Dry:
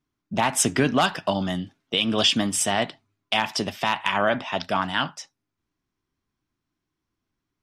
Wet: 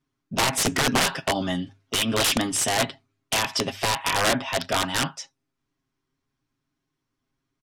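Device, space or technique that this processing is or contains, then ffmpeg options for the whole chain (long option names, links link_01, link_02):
overflowing digital effects unit: -af "bandreject=frequency=50:width_type=h:width=6,bandreject=frequency=100:width_type=h:width=6,aecho=1:1:7.4:0.67,aeval=exprs='(mod(5.01*val(0)+1,2)-1)/5.01':channel_layout=same,lowpass=11000"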